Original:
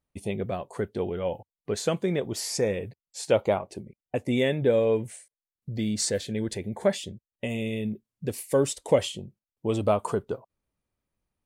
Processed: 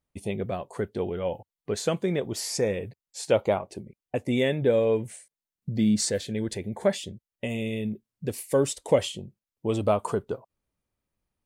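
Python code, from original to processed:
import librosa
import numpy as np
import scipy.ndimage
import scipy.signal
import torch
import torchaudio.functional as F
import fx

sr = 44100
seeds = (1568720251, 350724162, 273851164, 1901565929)

y = fx.peak_eq(x, sr, hz=190.0, db=8.5, octaves=0.79, at=(5.1, 6.01))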